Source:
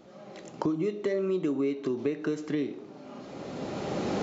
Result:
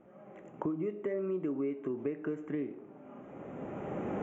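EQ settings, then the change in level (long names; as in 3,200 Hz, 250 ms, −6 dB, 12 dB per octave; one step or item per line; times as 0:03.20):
Butterworth band-reject 4,500 Hz, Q 0.82
high-frequency loss of the air 77 metres
high-shelf EQ 4,500 Hz −5 dB
−5.5 dB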